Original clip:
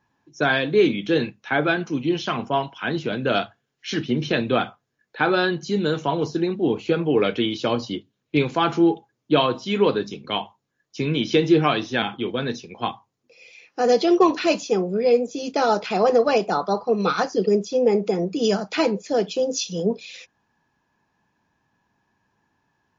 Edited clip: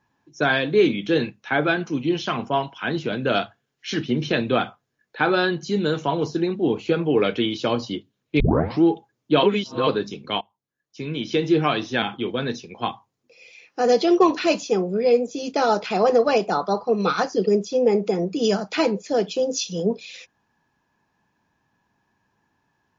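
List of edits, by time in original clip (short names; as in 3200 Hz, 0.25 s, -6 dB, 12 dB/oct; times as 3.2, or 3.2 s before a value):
8.4 tape start 0.43 s
9.43–9.87 reverse
10.41–11.91 fade in, from -21 dB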